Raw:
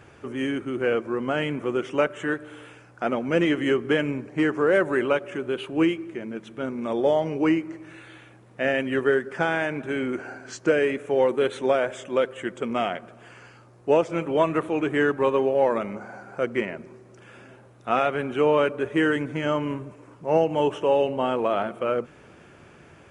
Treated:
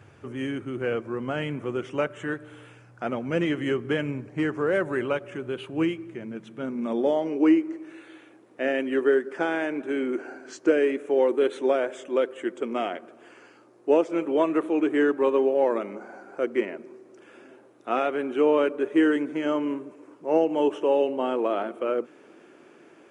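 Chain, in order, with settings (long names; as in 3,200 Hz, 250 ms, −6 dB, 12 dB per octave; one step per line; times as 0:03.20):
high-pass filter sweep 100 Hz → 310 Hz, 0:06.00–0:07.37
level −4.5 dB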